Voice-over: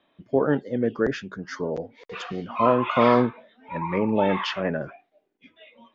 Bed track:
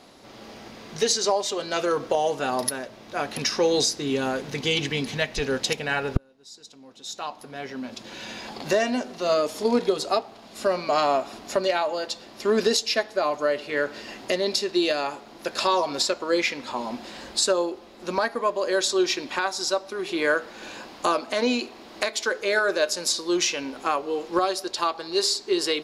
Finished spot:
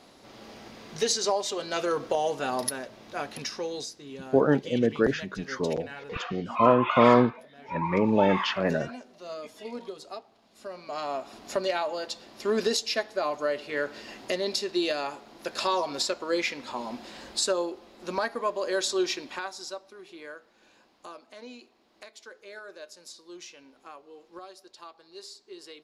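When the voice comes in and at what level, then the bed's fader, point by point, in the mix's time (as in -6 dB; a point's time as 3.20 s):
4.00 s, 0.0 dB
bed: 3.07 s -3.5 dB
3.97 s -16.5 dB
10.69 s -16.5 dB
11.50 s -4.5 dB
19.05 s -4.5 dB
20.35 s -21.5 dB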